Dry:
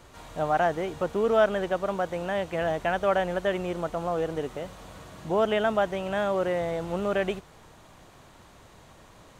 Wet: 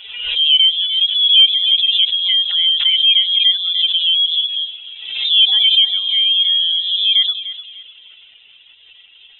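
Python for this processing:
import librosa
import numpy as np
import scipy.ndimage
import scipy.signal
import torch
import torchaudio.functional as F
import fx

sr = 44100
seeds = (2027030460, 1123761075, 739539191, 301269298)

p1 = fx.spec_expand(x, sr, power=2.3)
p2 = scipy.signal.sosfilt(scipy.signal.butter(2, 410.0, 'highpass', fs=sr, output='sos'), p1)
p3 = fx.rider(p2, sr, range_db=3, speed_s=0.5)
p4 = p2 + F.gain(torch.from_numpy(p3), -0.5).numpy()
p5 = fx.air_absorb(p4, sr, metres=70.0)
p6 = fx.echo_feedback(p5, sr, ms=299, feedback_pct=33, wet_db=-13.5)
p7 = fx.freq_invert(p6, sr, carrier_hz=3800)
p8 = fx.pre_swell(p7, sr, db_per_s=59.0)
y = F.gain(torch.from_numpy(p8), 7.5).numpy()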